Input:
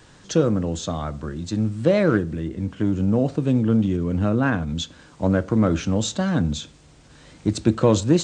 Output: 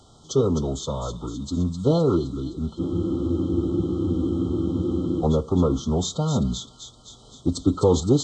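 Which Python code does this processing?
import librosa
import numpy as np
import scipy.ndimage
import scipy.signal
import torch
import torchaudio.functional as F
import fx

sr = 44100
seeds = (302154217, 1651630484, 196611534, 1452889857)

p1 = fx.pitch_keep_formants(x, sr, semitones=-3.5)
p2 = fx.brickwall_bandstop(p1, sr, low_hz=1400.0, high_hz=3000.0)
p3 = p2 + fx.echo_wet_highpass(p2, sr, ms=258, feedback_pct=61, hz=2300.0, wet_db=-7, dry=0)
p4 = fx.spec_freeze(p3, sr, seeds[0], at_s=2.82, hold_s=2.39)
y = F.gain(torch.from_numpy(p4), -1.0).numpy()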